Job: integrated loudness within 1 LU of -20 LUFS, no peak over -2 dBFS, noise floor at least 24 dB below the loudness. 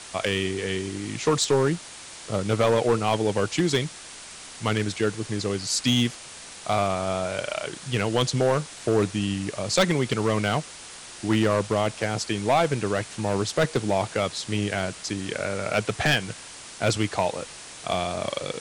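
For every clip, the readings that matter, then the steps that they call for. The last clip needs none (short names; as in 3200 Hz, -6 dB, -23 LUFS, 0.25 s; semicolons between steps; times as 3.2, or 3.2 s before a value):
clipped 1.0%; flat tops at -14.5 dBFS; noise floor -42 dBFS; noise floor target -50 dBFS; loudness -25.5 LUFS; peak -14.5 dBFS; loudness target -20.0 LUFS
-> clip repair -14.5 dBFS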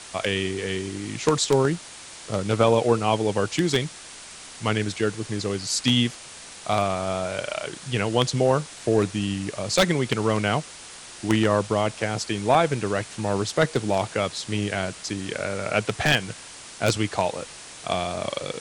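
clipped 0.0%; noise floor -42 dBFS; noise floor target -49 dBFS
-> denoiser 7 dB, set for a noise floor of -42 dBFS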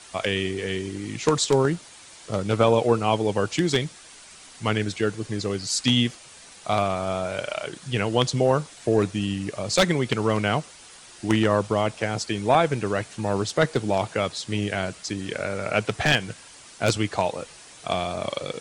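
noise floor -47 dBFS; noise floor target -49 dBFS
-> denoiser 6 dB, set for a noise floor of -47 dBFS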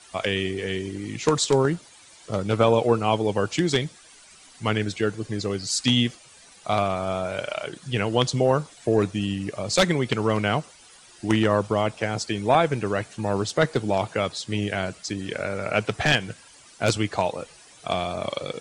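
noise floor -51 dBFS; loudness -24.5 LUFS; peak -5.0 dBFS; loudness target -20.0 LUFS
-> gain +4.5 dB; limiter -2 dBFS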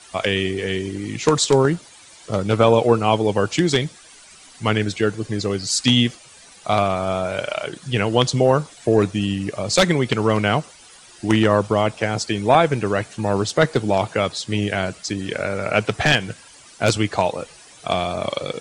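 loudness -20.0 LUFS; peak -2.0 dBFS; noise floor -46 dBFS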